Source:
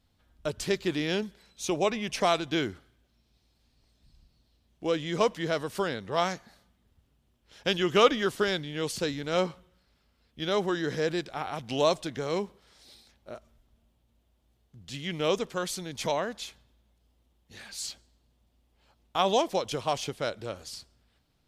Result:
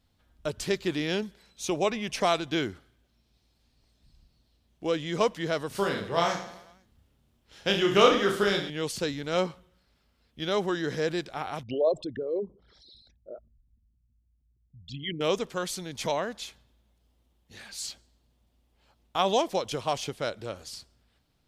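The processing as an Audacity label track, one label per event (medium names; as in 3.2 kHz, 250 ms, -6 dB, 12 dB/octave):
5.680000	8.700000	reverse bouncing-ball echo first gap 30 ms, each gap 1.2×, echoes 8
11.630000	15.210000	resonances exaggerated exponent 3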